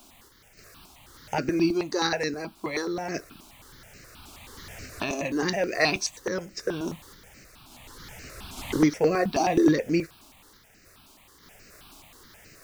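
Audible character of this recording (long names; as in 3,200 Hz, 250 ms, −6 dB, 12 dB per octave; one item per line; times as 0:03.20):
a quantiser's noise floor 10 bits, dither none
sample-and-hold tremolo 3.5 Hz
notches that jump at a steady rate 9.4 Hz 500–3,400 Hz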